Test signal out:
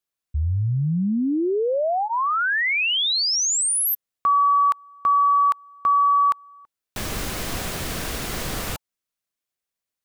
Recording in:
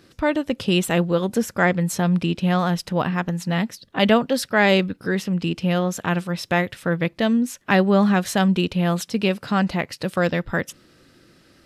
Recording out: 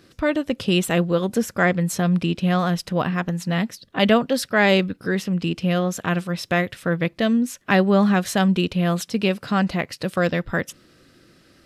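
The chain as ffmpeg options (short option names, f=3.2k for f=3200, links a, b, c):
-af "bandreject=f=880:w=12"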